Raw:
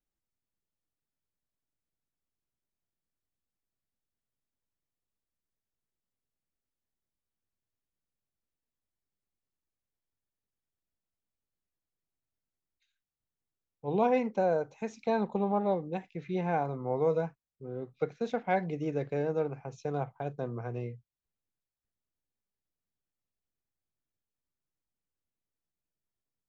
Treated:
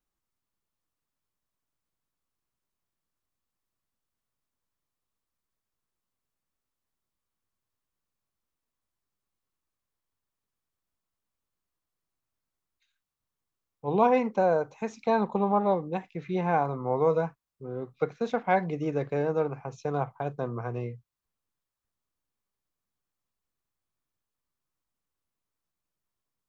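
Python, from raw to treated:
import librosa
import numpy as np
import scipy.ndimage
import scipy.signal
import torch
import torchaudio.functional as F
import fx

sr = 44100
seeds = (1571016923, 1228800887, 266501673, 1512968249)

y = fx.peak_eq(x, sr, hz=1100.0, db=7.5, octaves=0.61)
y = y * 10.0 ** (3.0 / 20.0)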